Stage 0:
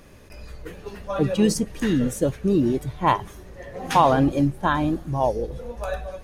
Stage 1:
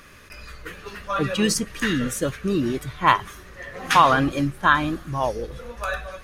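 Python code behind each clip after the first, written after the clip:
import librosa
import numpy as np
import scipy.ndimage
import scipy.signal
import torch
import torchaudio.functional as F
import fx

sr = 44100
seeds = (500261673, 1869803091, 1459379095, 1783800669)

y = fx.curve_eq(x, sr, hz=(860.0, 1200.0, 7900.0), db=(0, 13, 7))
y = y * librosa.db_to_amplitude(-3.0)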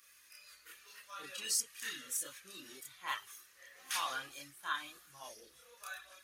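y = fx.add_hum(x, sr, base_hz=60, snr_db=26)
y = np.diff(y, prepend=0.0)
y = fx.chorus_voices(y, sr, voices=6, hz=0.34, base_ms=29, depth_ms=2.1, mix_pct=55)
y = y * librosa.db_to_amplitude(-3.5)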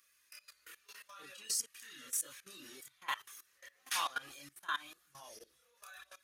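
y = fx.level_steps(x, sr, step_db=19)
y = y * librosa.db_to_amplitude(4.0)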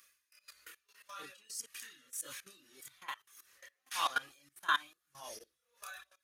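y = x * 10.0 ** (-20 * (0.5 - 0.5 * np.cos(2.0 * np.pi * 1.7 * np.arange(len(x)) / sr)) / 20.0)
y = y * librosa.db_to_amplitude(7.0)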